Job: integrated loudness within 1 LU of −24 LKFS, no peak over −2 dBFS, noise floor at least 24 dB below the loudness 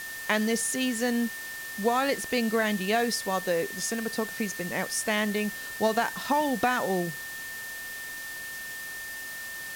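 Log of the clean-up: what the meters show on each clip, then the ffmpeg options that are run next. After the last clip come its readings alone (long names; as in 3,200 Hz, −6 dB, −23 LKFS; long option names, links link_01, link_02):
interfering tone 1,800 Hz; level of the tone −37 dBFS; background noise floor −38 dBFS; target noise floor −53 dBFS; integrated loudness −28.5 LKFS; sample peak −11.0 dBFS; target loudness −24.0 LKFS
→ -af "bandreject=frequency=1800:width=30"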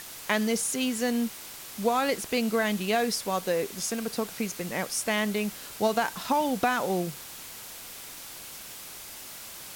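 interfering tone none found; background noise floor −43 dBFS; target noise floor −52 dBFS
→ -af "afftdn=noise_reduction=9:noise_floor=-43"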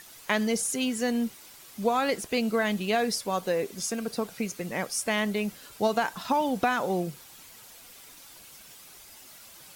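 background noise floor −50 dBFS; target noise floor −53 dBFS
→ -af "afftdn=noise_reduction=6:noise_floor=-50"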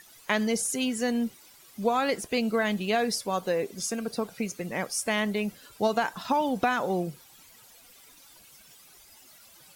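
background noise floor −55 dBFS; integrated loudness −28.5 LKFS; sample peak −11.5 dBFS; target loudness −24.0 LKFS
→ -af "volume=4.5dB"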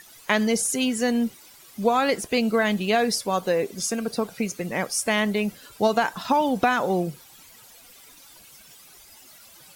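integrated loudness −24.0 LKFS; sample peak −7.0 dBFS; background noise floor −50 dBFS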